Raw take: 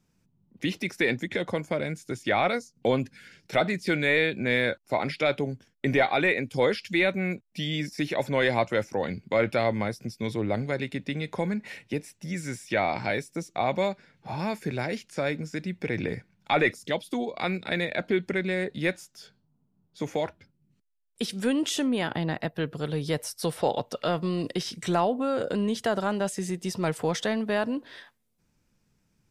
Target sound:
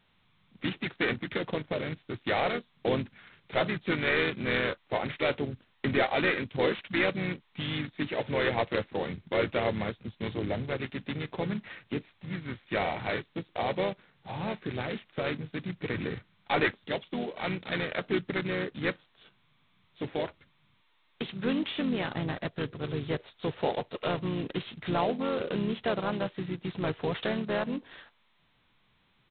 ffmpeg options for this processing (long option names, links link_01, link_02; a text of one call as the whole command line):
ffmpeg -i in.wav -filter_complex "[0:a]asplit=3[link_01][link_02][link_03];[link_02]asetrate=29433,aresample=44100,atempo=1.49831,volume=-11dB[link_04];[link_03]asetrate=37084,aresample=44100,atempo=1.18921,volume=-6dB[link_05];[link_01][link_04][link_05]amix=inputs=3:normalize=0,volume=-5dB" -ar 8000 -c:a adpcm_g726 -b:a 16k out.wav